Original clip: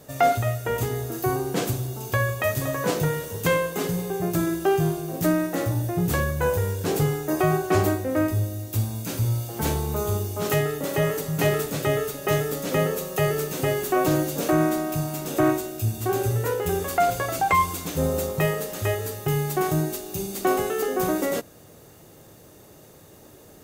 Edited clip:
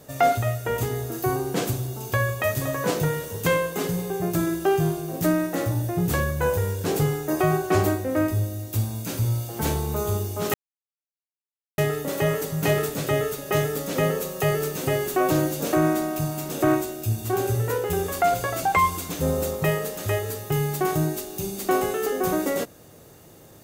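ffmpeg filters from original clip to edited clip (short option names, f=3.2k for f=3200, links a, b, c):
-filter_complex "[0:a]asplit=2[a][b];[a]atrim=end=10.54,asetpts=PTS-STARTPTS,afade=t=out:st=10.536:d=0.004:c=hsin,apad=pad_dur=1.24[c];[b]atrim=start=10.54,asetpts=PTS-STARTPTS,afade=t=in:d=0.004:c=hsin[d];[c][d]concat=n=2:v=0:a=1"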